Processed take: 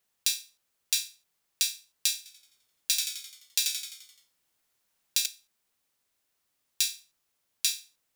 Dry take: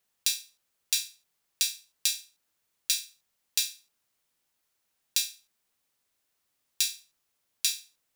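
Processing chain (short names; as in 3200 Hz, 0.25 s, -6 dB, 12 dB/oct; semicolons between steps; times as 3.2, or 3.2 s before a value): 2.17–5.26 frequency-shifting echo 86 ms, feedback 52%, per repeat -66 Hz, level -4 dB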